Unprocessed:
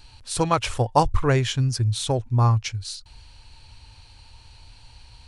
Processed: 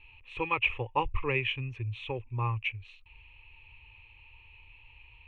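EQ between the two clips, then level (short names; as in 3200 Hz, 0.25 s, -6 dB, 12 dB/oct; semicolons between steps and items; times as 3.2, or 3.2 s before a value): ladder low-pass 2700 Hz, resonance 80%; fixed phaser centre 1000 Hz, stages 8; +3.5 dB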